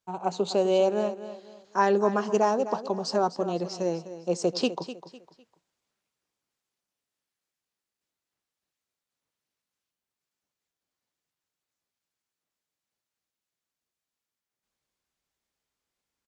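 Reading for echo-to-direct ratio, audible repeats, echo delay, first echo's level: −12.5 dB, 3, 252 ms, −13.0 dB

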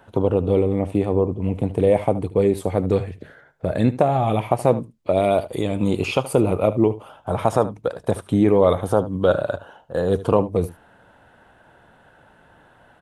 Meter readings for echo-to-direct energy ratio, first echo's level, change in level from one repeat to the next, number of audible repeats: −16.0 dB, −16.0 dB, repeats not evenly spaced, 1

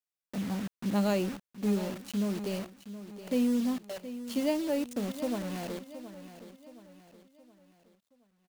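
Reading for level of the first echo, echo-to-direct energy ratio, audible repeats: −13.0 dB, −12.0 dB, 4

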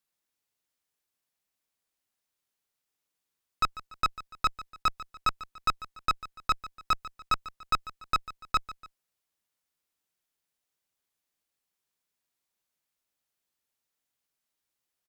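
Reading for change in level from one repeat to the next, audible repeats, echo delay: −7.5 dB, 2, 145 ms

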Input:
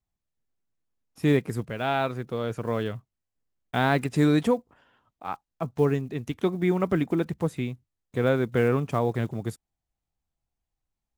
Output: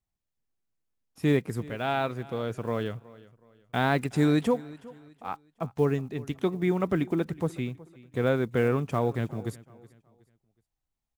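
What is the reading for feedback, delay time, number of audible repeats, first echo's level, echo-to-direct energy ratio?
34%, 370 ms, 2, −20.5 dB, −20.0 dB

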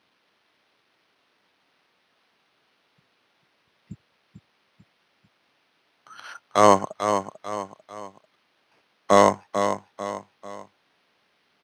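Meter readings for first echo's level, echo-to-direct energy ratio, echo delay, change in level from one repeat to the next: −8.0 dB, −7.0 dB, 444 ms, −7.5 dB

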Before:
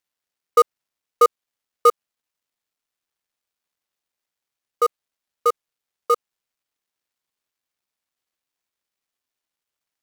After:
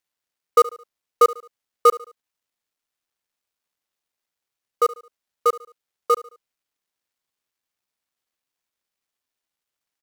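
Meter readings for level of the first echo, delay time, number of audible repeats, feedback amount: −18.5 dB, 72 ms, 3, 40%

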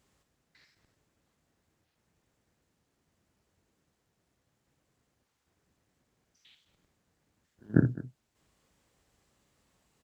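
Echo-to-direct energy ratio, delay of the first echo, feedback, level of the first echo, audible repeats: −9.5 dB, 58 ms, repeats not evenly spaced, −10.0 dB, 2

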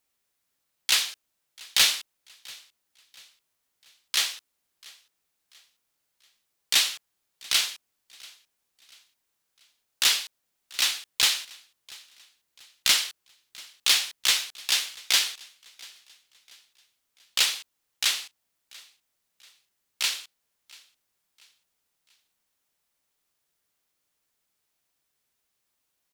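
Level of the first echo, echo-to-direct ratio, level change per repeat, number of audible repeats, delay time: −23.5 dB, −22.5 dB, −7.5 dB, 2, 688 ms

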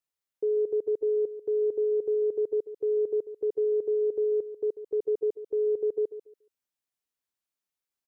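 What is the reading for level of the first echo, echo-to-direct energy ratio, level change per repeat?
−13.0 dB, −13.0 dB, −13.0 dB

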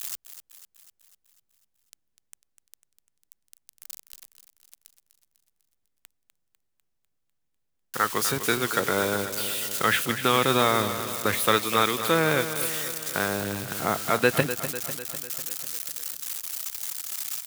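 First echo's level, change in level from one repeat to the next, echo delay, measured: −11.0 dB, −4.5 dB, 249 ms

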